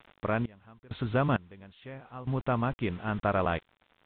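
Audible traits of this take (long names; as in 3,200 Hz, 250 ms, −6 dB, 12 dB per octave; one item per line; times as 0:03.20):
a quantiser's noise floor 8 bits, dither none
sample-and-hold tremolo 2.2 Hz, depth 95%
mu-law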